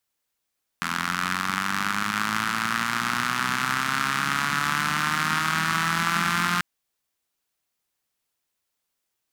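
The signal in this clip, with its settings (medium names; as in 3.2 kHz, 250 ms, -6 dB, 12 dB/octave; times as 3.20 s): four-cylinder engine model, changing speed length 5.79 s, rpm 2500, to 5300, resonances 200/1300 Hz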